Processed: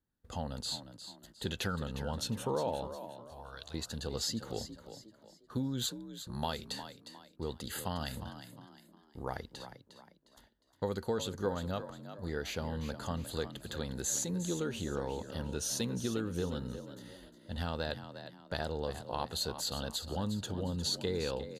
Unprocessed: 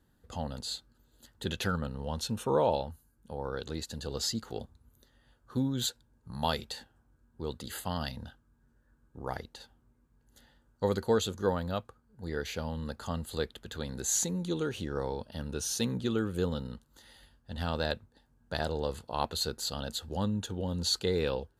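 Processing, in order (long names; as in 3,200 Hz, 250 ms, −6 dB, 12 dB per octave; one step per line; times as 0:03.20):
noise gate −59 dBFS, range −18 dB
0:02.87–0:03.74: guitar amp tone stack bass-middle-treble 10-0-10
downward compressor 3 to 1, threshold −32 dBFS, peak gain reduction 8.5 dB
echo with shifted repeats 357 ms, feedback 36%, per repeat +49 Hz, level −11 dB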